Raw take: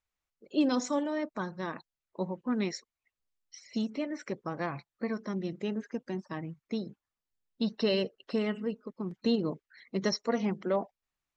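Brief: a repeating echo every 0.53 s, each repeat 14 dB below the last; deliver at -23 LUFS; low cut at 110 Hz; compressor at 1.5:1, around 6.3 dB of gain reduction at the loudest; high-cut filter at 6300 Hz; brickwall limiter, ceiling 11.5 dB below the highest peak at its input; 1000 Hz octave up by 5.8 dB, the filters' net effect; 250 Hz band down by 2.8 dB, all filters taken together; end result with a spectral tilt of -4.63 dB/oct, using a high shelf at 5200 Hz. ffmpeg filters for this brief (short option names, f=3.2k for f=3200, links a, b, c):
-af "highpass=110,lowpass=6.3k,equalizer=f=250:t=o:g=-3.5,equalizer=f=1k:t=o:g=7,highshelf=f=5.2k:g=8,acompressor=threshold=-41dB:ratio=1.5,alimiter=level_in=8.5dB:limit=-24dB:level=0:latency=1,volume=-8.5dB,aecho=1:1:530|1060:0.2|0.0399,volume=20.5dB"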